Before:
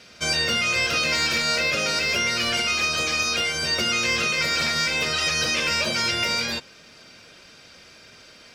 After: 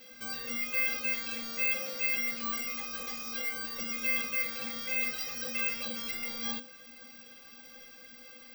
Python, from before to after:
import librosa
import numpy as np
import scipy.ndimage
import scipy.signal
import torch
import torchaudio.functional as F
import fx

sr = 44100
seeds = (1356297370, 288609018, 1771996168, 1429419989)

p1 = fx.over_compress(x, sr, threshold_db=-32.0, ratio=-1.0)
p2 = x + F.gain(torch.from_numpy(p1), -1.0).numpy()
p3 = fx.stiff_resonator(p2, sr, f0_hz=240.0, decay_s=0.21, stiffness=0.03)
p4 = (np.kron(scipy.signal.resample_poly(p3, 1, 2), np.eye(2)[0]) * 2)[:len(p3)]
y = F.gain(torch.from_numpy(p4), -4.0).numpy()